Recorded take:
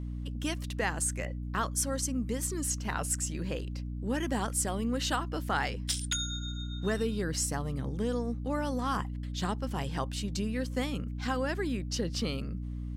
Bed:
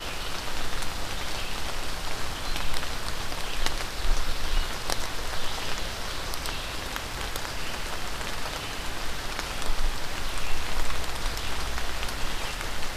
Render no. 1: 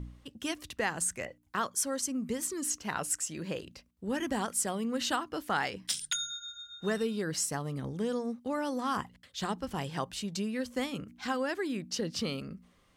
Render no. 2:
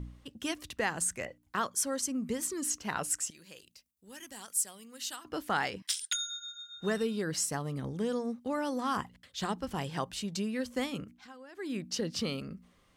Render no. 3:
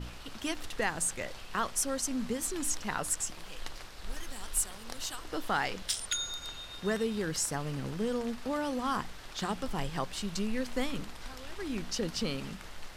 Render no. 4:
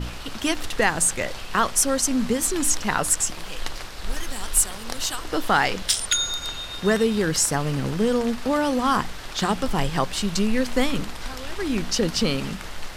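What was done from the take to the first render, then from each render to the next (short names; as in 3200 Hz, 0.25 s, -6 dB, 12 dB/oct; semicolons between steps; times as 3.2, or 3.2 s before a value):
de-hum 60 Hz, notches 5
3.3–5.25 pre-emphasis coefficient 0.9; 5.82–6.76 HPF 1200 Hz; 11.03–11.76 dip -18.5 dB, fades 0.24 s
add bed -15 dB
gain +11 dB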